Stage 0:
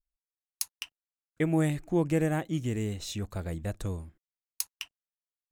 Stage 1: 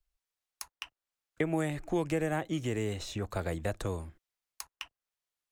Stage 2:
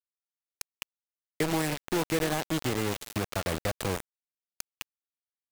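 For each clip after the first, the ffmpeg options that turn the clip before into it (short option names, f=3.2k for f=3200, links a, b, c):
-filter_complex "[0:a]highshelf=f=8.5k:g=-6.5,acrossover=split=120|310|1700[a][b][c][d];[a]acompressor=threshold=-48dB:ratio=4[e];[b]acompressor=threshold=-41dB:ratio=4[f];[c]acompressor=threshold=-36dB:ratio=4[g];[d]acompressor=threshold=-51dB:ratio=4[h];[e][f][g][h]amix=inputs=4:normalize=0,equalizer=f=200:w=0.83:g=-6.5,volume=7.5dB"
-filter_complex "[0:a]aeval=exprs='val(0)+0.5*0.0158*sgn(val(0))':c=same,asplit=2[a][b];[b]adelay=300,highpass=300,lowpass=3.4k,asoftclip=type=hard:threshold=-26dB,volume=-13dB[c];[a][c]amix=inputs=2:normalize=0,acrusher=bits=4:mix=0:aa=0.000001"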